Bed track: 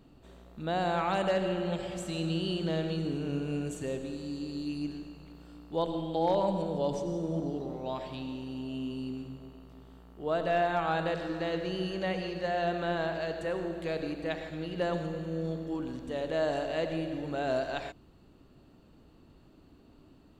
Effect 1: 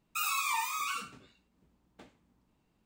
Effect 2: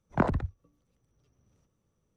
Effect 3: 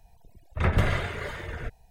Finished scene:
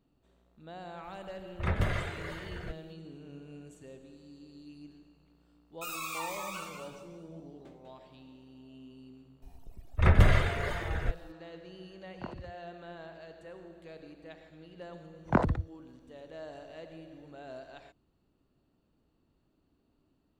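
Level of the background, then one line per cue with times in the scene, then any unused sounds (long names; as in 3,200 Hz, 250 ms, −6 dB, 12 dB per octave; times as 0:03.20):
bed track −15 dB
0:01.03: mix in 3 −6.5 dB
0:05.66: mix in 1 −7 dB + feedback echo with a swinging delay time 193 ms, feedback 34%, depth 113 cents, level −6 dB
0:09.42: mix in 3 −0.5 dB + low-shelf EQ 67 Hz +7.5 dB
0:12.04: mix in 2 −16.5 dB
0:15.15: mix in 2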